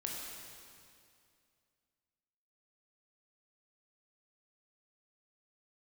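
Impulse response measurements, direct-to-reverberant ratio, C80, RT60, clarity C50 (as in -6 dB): -2.0 dB, 1.5 dB, 2.4 s, 0.0 dB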